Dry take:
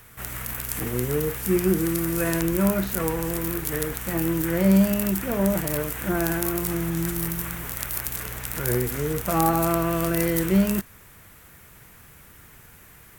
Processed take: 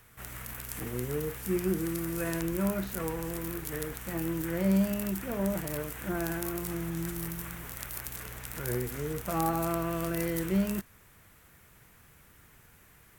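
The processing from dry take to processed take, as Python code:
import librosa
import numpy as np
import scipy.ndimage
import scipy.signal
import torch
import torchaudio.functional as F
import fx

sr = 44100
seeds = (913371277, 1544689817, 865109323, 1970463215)

y = fx.high_shelf(x, sr, hz=11000.0, db=-3.5)
y = y * librosa.db_to_amplitude(-8.0)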